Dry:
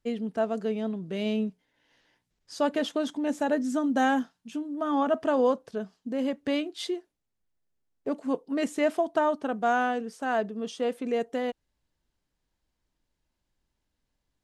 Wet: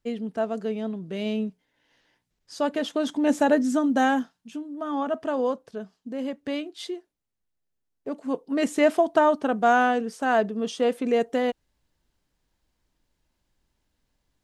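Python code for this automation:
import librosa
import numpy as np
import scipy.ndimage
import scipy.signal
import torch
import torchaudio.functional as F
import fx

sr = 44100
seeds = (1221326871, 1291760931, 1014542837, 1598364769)

y = fx.gain(x, sr, db=fx.line((2.85, 0.5), (3.32, 7.5), (4.69, -2.0), (8.1, -2.0), (8.75, 5.5)))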